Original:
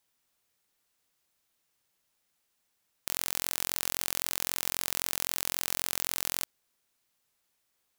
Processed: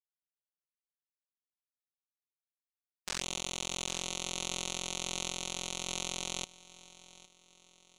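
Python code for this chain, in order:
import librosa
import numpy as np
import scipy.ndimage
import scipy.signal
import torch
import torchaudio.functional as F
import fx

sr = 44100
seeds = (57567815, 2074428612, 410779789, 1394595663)

y = fx.bin_expand(x, sr, power=3.0)
y = scipy.signal.sosfilt(scipy.signal.butter(4, 7700.0, 'lowpass', fs=sr, output='sos'), y)
y = y + 0.92 * np.pad(y, (int(5.4 * sr / 1000.0), 0))[:len(y)]
y = fx.level_steps(y, sr, step_db=13, at=(5.29, 5.87), fade=0.02)
y = fx.env_flanger(y, sr, rest_ms=10.9, full_db=-36.5)
y = fx.echo_feedback(y, sr, ms=810, feedback_pct=43, wet_db=-19.0)
y = y * librosa.db_to_amplitude(1.5)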